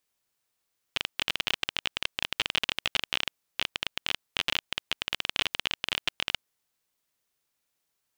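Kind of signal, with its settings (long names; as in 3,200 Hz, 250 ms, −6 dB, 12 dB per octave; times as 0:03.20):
Geiger counter clicks 24 per second −9 dBFS 5.52 s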